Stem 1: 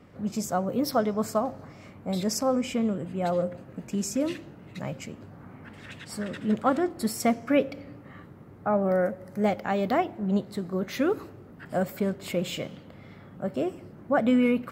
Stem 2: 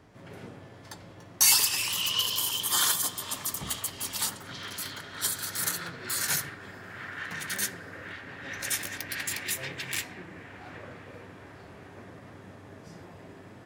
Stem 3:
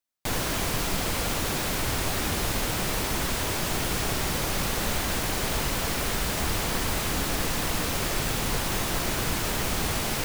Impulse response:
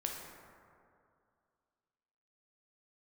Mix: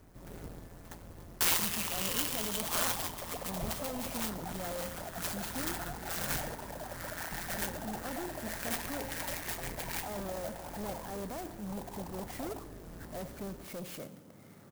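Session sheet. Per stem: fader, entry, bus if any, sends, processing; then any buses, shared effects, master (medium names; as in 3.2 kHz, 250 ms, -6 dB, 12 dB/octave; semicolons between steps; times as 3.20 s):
-6.5 dB, 1.40 s, no send, high-pass 120 Hz 12 dB/octave; peak limiter -18.5 dBFS, peak gain reduction 7.5 dB; saturation -31 dBFS, distortion -8 dB
-0.5 dB, 0.00 s, no send, octave divider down 2 oct, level +3 dB; AM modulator 170 Hz, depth 60%
-19.0 dB, 2.35 s, muted 11.10–11.67 s, send -4.5 dB, formants replaced by sine waves; steep low-pass 1 kHz 72 dB/octave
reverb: on, RT60 2.4 s, pre-delay 7 ms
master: treble shelf 8.7 kHz -8.5 dB; sampling jitter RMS 0.079 ms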